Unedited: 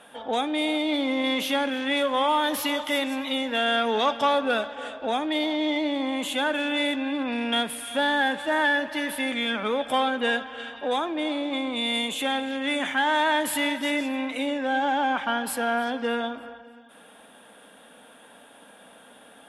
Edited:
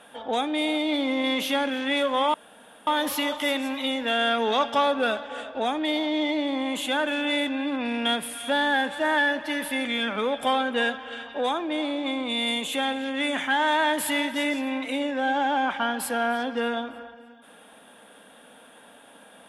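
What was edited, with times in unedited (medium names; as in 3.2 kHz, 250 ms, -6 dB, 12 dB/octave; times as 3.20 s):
2.34 s: insert room tone 0.53 s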